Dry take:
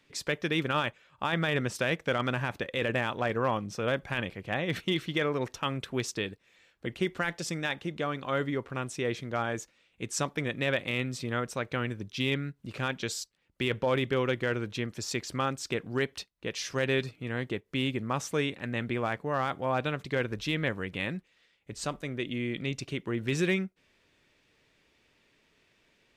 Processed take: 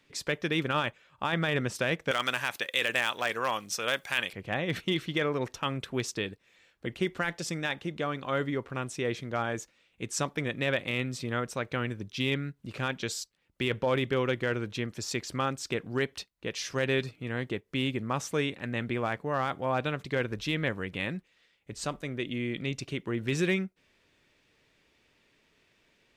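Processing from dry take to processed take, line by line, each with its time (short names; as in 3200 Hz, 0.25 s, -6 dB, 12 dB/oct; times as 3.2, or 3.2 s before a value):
2.11–4.33 tilt +4.5 dB/oct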